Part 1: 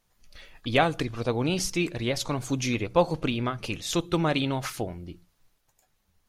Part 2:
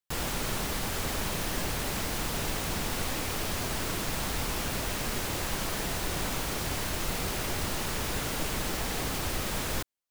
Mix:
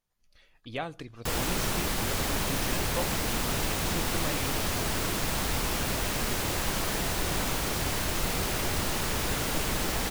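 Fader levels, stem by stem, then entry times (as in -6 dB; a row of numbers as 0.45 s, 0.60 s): -12.5 dB, +2.5 dB; 0.00 s, 1.15 s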